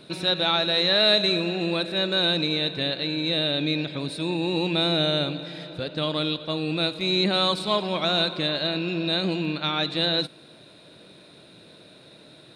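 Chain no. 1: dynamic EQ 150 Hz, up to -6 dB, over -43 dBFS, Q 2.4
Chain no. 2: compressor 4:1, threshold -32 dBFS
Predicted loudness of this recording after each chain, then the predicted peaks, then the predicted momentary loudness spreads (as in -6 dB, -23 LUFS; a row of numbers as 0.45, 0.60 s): -23.5, -33.0 LUFS; -9.0, -20.5 dBFS; 8, 17 LU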